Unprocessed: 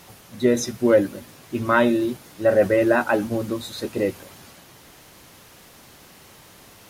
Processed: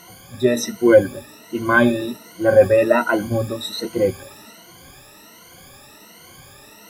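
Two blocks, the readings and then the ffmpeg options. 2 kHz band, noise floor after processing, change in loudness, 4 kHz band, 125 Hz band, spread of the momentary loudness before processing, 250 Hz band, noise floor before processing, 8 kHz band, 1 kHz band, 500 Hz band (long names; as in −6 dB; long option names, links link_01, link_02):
+5.0 dB, −46 dBFS, +3.5 dB, +5.0 dB, +4.5 dB, 11 LU, +1.5 dB, −49 dBFS, +2.0 dB, +2.0 dB, +4.0 dB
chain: -af "afftfilt=real='re*pow(10,22/40*sin(2*PI*(1.9*log(max(b,1)*sr/1024/100)/log(2)-(1.3)*(pts-256)/sr)))':imag='im*pow(10,22/40*sin(2*PI*(1.9*log(max(b,1)*sr/1024/100)/log(2)-(1.3)*(pts-256)/sr)))':win_size=1024:overlap=0.75,volume=-1.5dB"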